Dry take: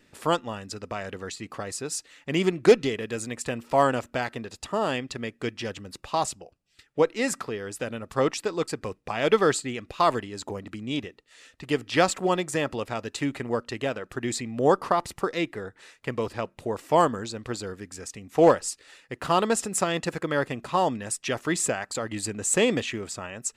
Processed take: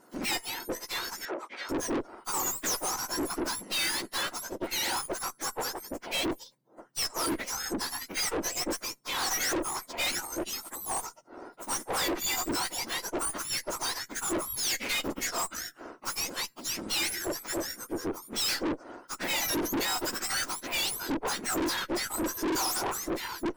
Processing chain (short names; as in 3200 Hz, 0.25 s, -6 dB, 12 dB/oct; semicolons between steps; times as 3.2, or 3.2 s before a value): spectrum mirrored in octaves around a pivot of 1600 Hz; tube stage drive 36 dB, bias 0.75; 1.25–1.69 BPF 390–3300 Hz; gain +8.5 dB